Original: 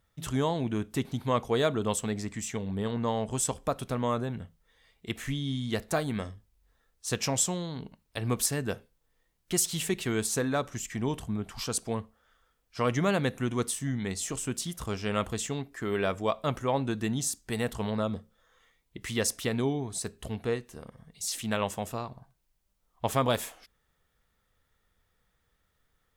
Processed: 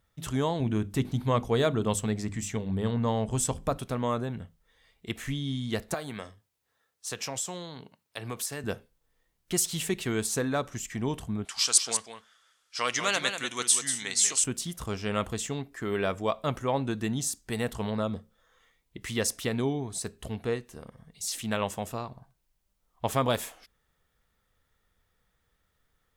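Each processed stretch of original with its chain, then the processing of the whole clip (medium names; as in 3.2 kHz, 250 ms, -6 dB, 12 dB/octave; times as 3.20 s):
0.60–3.78 s: bass shelf 150 Hz +9.5 dB + hum notches 50/100/150/200/250/300/350 Hz
5.94–8.64 s: high-pass 110 Hz 24 dB/octave + peaking EQ 190 Hz -8.5 dB 1.9 oct + compression 2.5:1, threshold -31 dBFS
11.45–14.44 s: frequency weighting ITU-R 468 + delay 191 ms -7.5 dB
whole clip: none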